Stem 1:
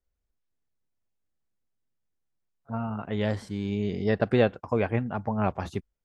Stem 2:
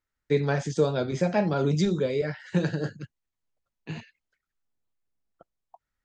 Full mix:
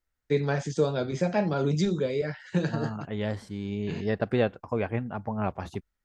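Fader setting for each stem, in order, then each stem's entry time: -3.0, -1.5 dB; 0.00, 0.00 s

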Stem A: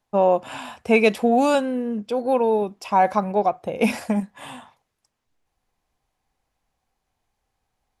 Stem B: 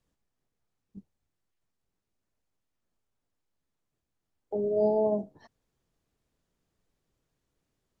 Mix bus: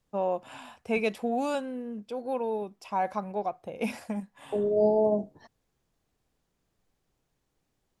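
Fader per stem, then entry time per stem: -11.0, +2.0 dB; 0.00, 0.00 s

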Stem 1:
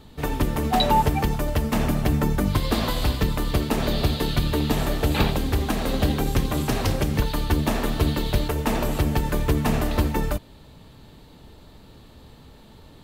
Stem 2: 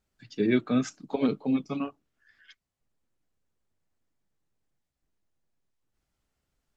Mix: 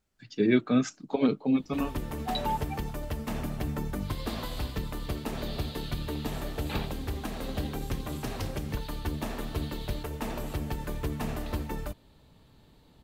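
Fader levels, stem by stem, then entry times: -11.0, +1.0 dB; 1.55, 0.00 s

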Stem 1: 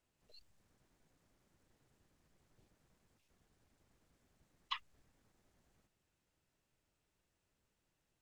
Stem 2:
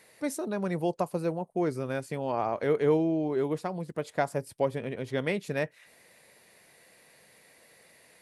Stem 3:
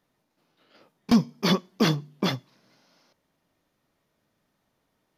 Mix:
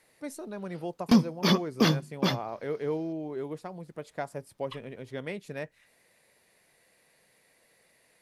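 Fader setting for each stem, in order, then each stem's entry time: -4.0, -7.0, -1.0 dB; 0.00, 0.00, 0.00 s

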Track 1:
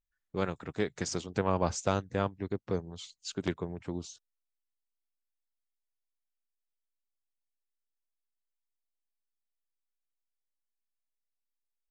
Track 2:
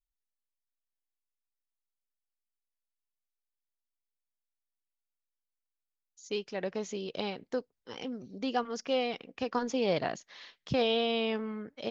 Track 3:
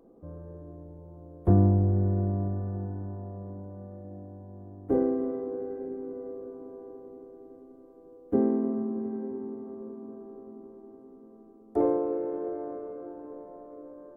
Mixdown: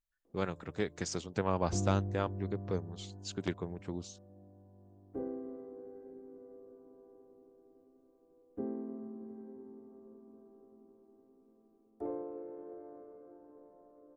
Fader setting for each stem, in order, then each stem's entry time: -3.0 dB, off, -14.5 dB; 0.00 s, off, 0.25 s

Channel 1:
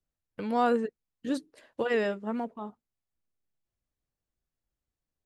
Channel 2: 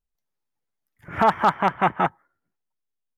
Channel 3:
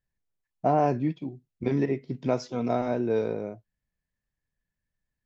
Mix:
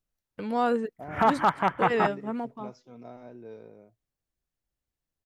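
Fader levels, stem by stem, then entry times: 0.0, -4.0, -18.5 dB; 0.00, 0.00, 0.35 s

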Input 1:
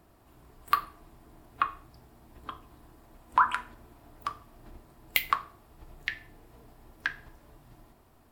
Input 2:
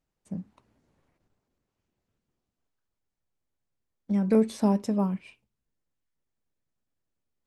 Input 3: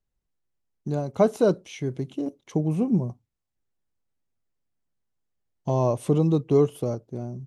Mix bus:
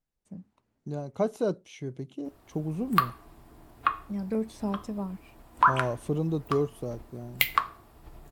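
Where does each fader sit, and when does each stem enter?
+2.0, -8.0, -7.5 dB; 2.25, 0.00, 0.00 s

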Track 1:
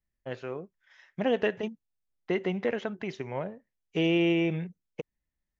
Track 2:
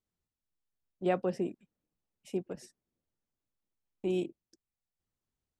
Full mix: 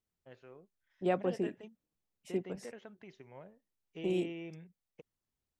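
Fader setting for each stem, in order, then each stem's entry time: -18.0, -1.5 dB; 0.00, 0.00 s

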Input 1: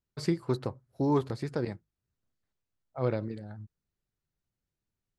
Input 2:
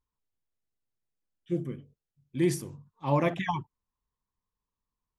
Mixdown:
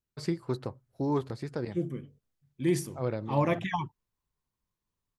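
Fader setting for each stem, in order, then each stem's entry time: -2.5, -1.0 dB; 0.00, 0.25 s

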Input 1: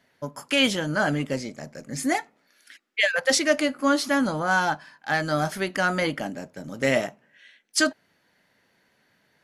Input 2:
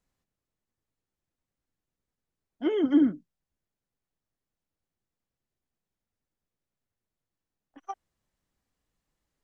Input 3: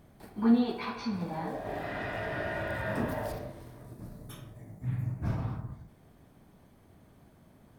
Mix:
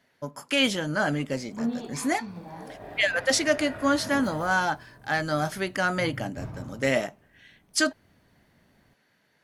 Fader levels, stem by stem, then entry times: -2.0 dB, off, -5.5 dB; 0.00 s, off, 1.15 s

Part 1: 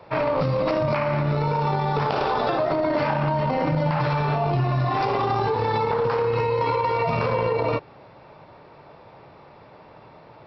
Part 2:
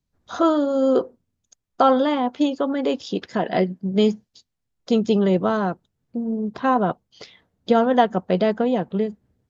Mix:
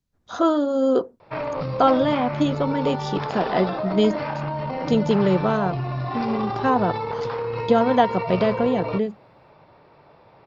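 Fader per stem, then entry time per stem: -5.0, -1.0 dB; 1.20, 0.00 s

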